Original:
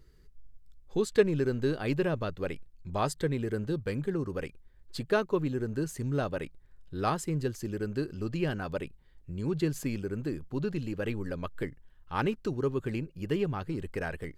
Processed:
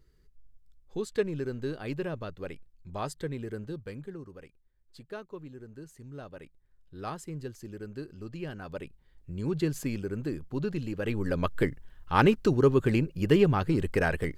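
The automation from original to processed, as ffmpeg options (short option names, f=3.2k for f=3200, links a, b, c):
-af "volume=17dB,afade=t=out:st=3.51:d=0.89:silence=0.354813,afade=t=in:st=6.08:d=1.13:silence=0.473151,afade=t=in:st=8.52:d=0.88:silence=0.398107,afade=t=in:st=11.03:d=0.41:silence=0.421697"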